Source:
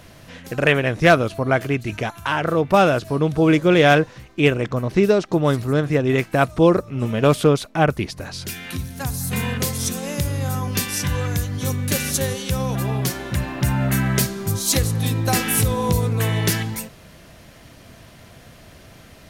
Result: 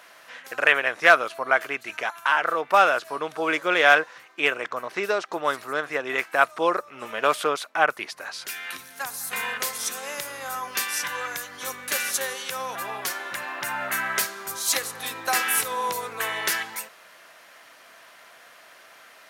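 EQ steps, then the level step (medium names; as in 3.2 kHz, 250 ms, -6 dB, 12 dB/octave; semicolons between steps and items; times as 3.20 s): high-pass 500 Hz 12 dB/octave; peaking EQ 1.4 kHz +12 dB 2.1 oct; treble shelf 5.1 kHz +6.5 dB; -9.0 dB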